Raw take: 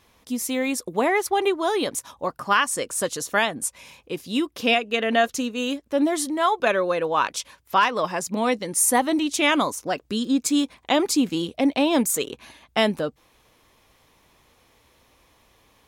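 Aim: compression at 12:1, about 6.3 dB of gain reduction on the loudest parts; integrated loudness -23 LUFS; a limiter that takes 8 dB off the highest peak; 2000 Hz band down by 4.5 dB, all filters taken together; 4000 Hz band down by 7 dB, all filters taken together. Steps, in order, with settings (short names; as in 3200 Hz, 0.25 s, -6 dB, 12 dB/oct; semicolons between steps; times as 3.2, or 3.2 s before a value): bell 2000 Hz -3.5 dB; bell 4000 Hz -8.5 dB; compressor 12:1, threshold -22 dBFS; gain +7.5 dB; limiter -13.5 dBFS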